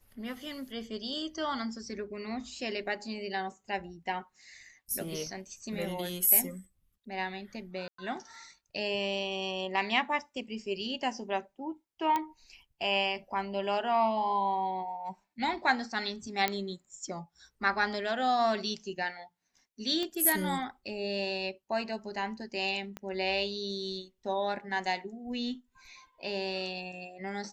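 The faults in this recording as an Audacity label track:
7.880000	7.980000	dropout 104 ms
12.160000	12.160000	pop -16 dBFS
16.480000	16.480000	pop -12 dBFS
20.030000	20.030000	pop -20 dBFS
22.970000	22.970000	pop -24 dBFS

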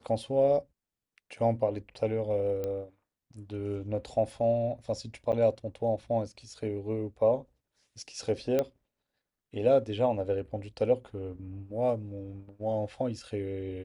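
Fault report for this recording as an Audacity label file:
2.640000	2.640000	pop -22 dBFS
5.320000	5.330000	dropout 8.8 ms
8.590000	8.590000	pop -15 dBFS

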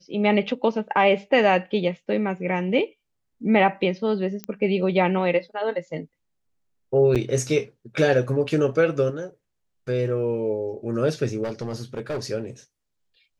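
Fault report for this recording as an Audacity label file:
4.440000	4.440000	pop -16 dBFS
7.150000	7.160000	dropout 7.1 ms
11.430000	12.190000	clipped -24.5 dBFS

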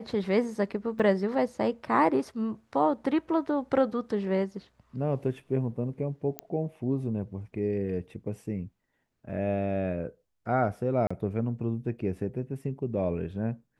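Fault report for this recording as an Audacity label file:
0.990000	1.000000	dropout 5.7 ms
6.390000	6.390000	pop -15 dBFS
11.070000	11.110000	dropout 35 ms

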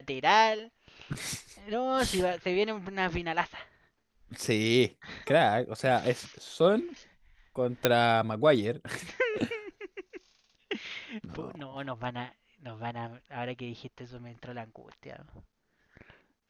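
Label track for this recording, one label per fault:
7.850000	7.850000	pop -6 dBFS

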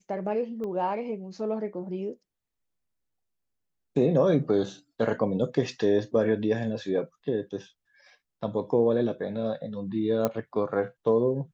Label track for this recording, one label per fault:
0.640000	0.640000	pop -26 dBFS
10.250000	10.250000	pop -12 dBFS

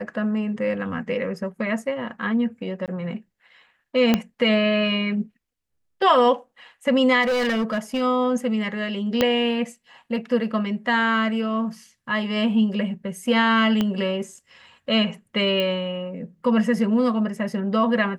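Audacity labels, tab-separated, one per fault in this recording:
2.860000	2.880000	dropout 18 ms
4.140000	4.140000	pop -5 dBFS
7.220000	8.020000	clipped -19 dBFS
9.210000	9.210000	pop -5 dBFS
13.810000	13.810000	pop -10 dBFS
15.600000	15.600000	pop -13 dBFS

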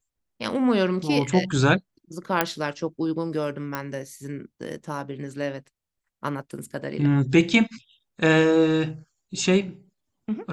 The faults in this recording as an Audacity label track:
2.410000	2.410000	pop -5 dBFS
3.750000	3.750000	pop -13 dBFS

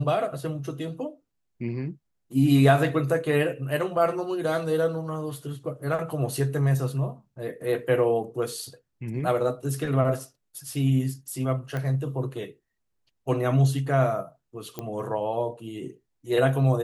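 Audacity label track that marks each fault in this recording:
11.770000	11.770000	pop -19 dBFS
14.790000	14.790000	pop -18 dBFS

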